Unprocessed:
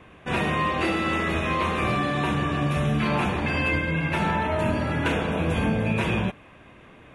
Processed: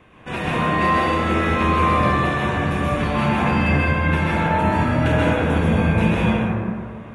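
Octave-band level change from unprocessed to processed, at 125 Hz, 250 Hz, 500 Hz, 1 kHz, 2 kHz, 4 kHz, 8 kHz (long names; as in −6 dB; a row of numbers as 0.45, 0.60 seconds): +6.0, +6.0, +5.0, +7.0, +4.0, +2.0, +2.0 decibels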